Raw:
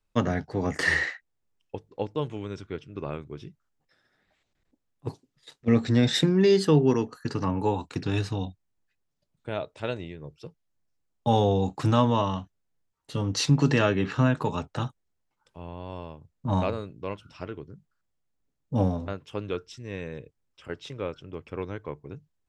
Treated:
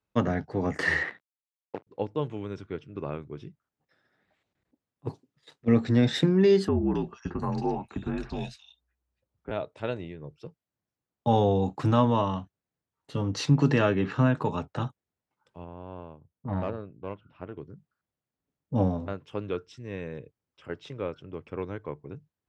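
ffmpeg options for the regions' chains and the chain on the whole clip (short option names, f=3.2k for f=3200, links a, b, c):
-filter_complex "[0:a]asettb=1/sr,asplit=3[a][b][c];[a]atrim=end=1.034[d];[b]atrim=start=1.03:end=1.87,asetpts=PTS-STARTPTS,afade=t=in:d=0.004:c=qsin,afade=t=out:st=0.836:d=0.004:c=qsin,acrusher=bits=6:dc=4:mix=0:aa=0.000001,highpass=190,lowpass=2.3k[e];[c]atrim=start=1.866[f];[d][e]acrossfade=d=0.004:c1=hsin:c2=qsin[g];[g][f]acrossfade=d=0.004:c1=qsin:c2=hsin,asettb=1/sr,asplit=3[h][i][j];[h]atrim=end=6.684[k];[i]atrim=start=6.68:end=9.51,asetpts=PTS-STARTPTS,afade=t=in:d=0.004:c=qsin,afade=t=out:st=2.826:d=0.004:c=qsin,afreqshift=-61,acompressor=threshold=-23dB:ratio=2:attack=3.2:release=140:knee=1:detection=peak,acrossover=split=2300[l][m];[m]adelay=270[n];[l][n]amix=inputs=2:normalize=0,atrim=end_sample=124803[o];[j]atrim=start=9.506[p];[k][o]acrossfade=d=0.004:c1=hsin:c2=qsin[q];[q][p]acrossfade=d=0.004:c1=qsin:c2=hsin,asettb=1/sr,asplit=3[r][s][t];[r]atrim=end=15.644[u];[s]atrim=start=15.64:end=17.57,asetpts=PTS-STARTPTS,afade=t=in:d=0.004:c=qsin,afade=t=out:st=1.926:d=0.004:c=qsin,lowpass=f=3.5k:w=0.5412,lowpass=f=3.5k:w=1.3066,aeval=exprs='(tanh(12.6*val(0)+0.75)-tanh(0.75))/12.6':c=same,highshelf=f=2.4k:g=-6.5[v];[t]atrim=start=17.566[w];[u][v]acrossfade=d=0.004:c1=hsin:c2=qsin[x];[x][w]acrossfade=d=0.004:c1=qsin:c2=hsin,highpass=81,highshelf=f=3.7k:g=-10.5"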